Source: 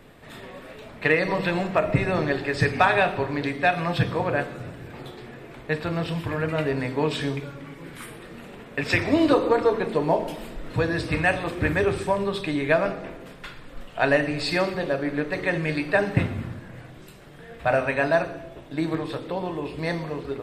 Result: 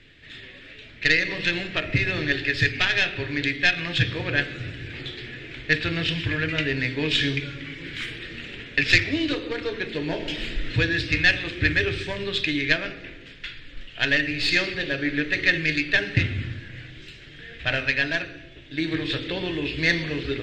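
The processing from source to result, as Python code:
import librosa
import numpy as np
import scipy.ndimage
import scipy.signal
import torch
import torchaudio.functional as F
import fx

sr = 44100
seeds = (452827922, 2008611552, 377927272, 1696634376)

y = fx.tracing_dist(x, sr, depth_ms=0.14)
y = fx.rider(y, sr, range_db=10, speed_s=0.5)
y = fx.curve_eq(y, sr, hz=(110.0, 200.0, 300.0, 770.0, 1100.0, 1700.0, 3200.0, 4900.0, 7100.0, 10000.0), db=(0, -11, -3, -17, -16, 3, 8, 2, -4, -23))
y = y * 10.0 ** (2.5 / 20.0)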